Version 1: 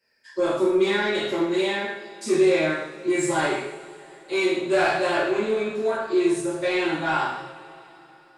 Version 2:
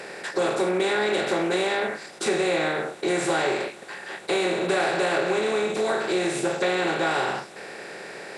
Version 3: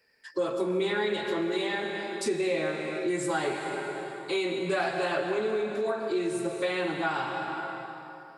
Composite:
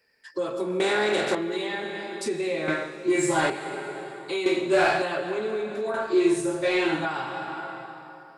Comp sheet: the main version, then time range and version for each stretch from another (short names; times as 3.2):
3
0.8–1.35 from 2
2.68–3.5 from 1
4.46–5.02 from 1
5.94–7.05 from 1